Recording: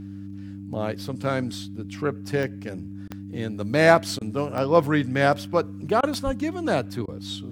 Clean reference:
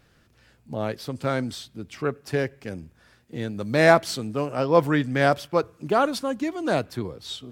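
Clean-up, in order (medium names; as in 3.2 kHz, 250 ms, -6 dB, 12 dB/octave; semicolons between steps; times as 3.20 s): de-click; de-hum 98.5 Hz, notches 3; de-plosive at 6.25 s; interpolate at 3.08/4.19/6.01/7.06 s, 20 ms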